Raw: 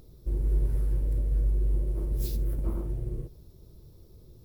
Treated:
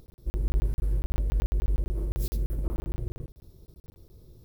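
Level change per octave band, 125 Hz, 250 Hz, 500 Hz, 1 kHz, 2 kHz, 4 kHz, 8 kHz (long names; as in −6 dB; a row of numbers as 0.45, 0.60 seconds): −1.0, 0.0, −0.5, +7.0, +10.0, +3.0, +1.0 decibels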